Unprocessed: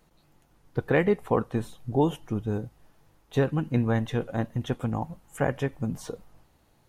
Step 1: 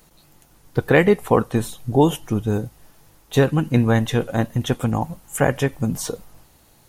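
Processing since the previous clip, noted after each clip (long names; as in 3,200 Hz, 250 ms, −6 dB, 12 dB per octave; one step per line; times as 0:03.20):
high-shelf EQ 4,400 Hz +11.5 dB
level +7.5 dB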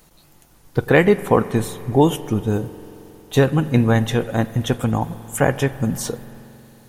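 spring reverb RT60 3.4 s, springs 45 ms, chirp 70 ms, DRR 15 dB
level +1 dB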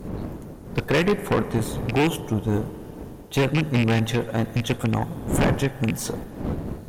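loose part that buzzes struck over −18 dBFS, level −11 dBFS
wind on the microphone 280 Hz −28 dBFS
tube saturation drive 15 dB, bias 0.6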